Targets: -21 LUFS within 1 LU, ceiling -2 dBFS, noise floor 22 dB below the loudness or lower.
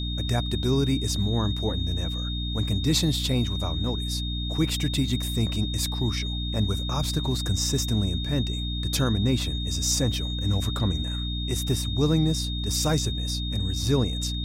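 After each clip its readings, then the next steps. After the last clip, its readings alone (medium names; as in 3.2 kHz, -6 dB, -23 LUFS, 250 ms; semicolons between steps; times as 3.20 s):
hum 60 Hz; highest harmonic 300 Hz; hum level -27 dBFS; steady tone 3.7 kHz; tone level -33 dBFS; loudness -26.0 LUFS; peak level -11.0 dBFS; loudness target -21.0 LUFS
-> hum notches 60/120/180/240/300 Hz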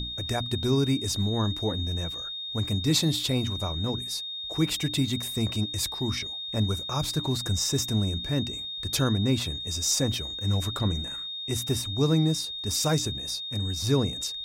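hum not found; steady tone 3.7 kHz; tone level -33 dBFS
-> band-stop 3.7 kHz, Q 30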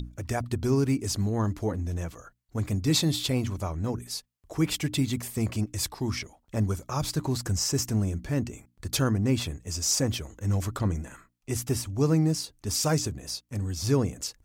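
steady tone not found; loudness -28.5 LUFS; peak level -12.0 dBFS; loudness target -21.0 LUFS
-> trim +7.5 dB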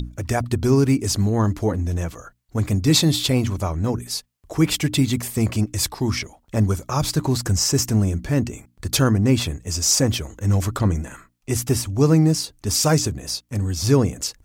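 loudness -21.0 LUFS; peak level -4.5 dBFS; noise floor -61 dBFS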